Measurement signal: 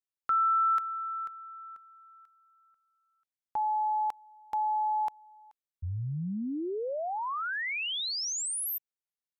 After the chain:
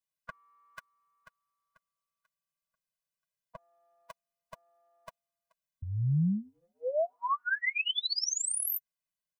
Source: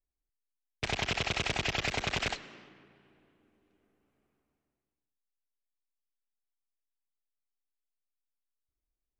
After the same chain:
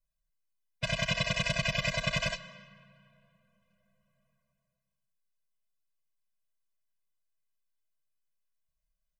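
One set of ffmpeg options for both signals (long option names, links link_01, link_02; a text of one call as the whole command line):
ffmpeg -i in.wav -af "aecho=1:1:6.3:0.71,afftfilt=real='re*eq(mod(floor(b*sr/1024/240),2),0)':imag='im*eq(mod(floor(b*sr/1024/240),2),0)':win_size=1024:overlap=0.75,volume=3dB" out.wav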